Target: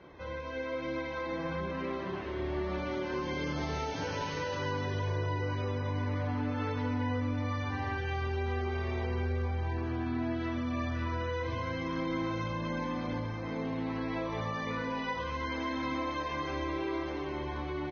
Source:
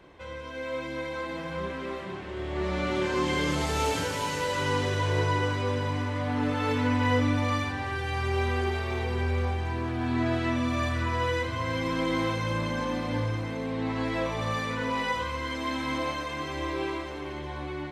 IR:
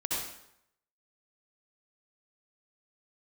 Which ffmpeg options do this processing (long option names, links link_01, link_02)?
-filter_complex "[0:a]highshelf=frequency=3300:gain=-7.5,acompressor=threshold=-32dB:ratio=8,aecho=1:1:133|266|399:0.355|0.0887|0.0222,asplit=2[link_01][link_02];[1:a]atrim=start_sample=2205,lowshelf=frequency=190:gain=6[link_03];[link_02][link_03]afir=irnorm=-1:irlink=0,volume=-28dB[link_04];[link_01][link_04]amix=inputs=2:normalize=0" -ar 16000 -c:a libvorbis -b:a 16k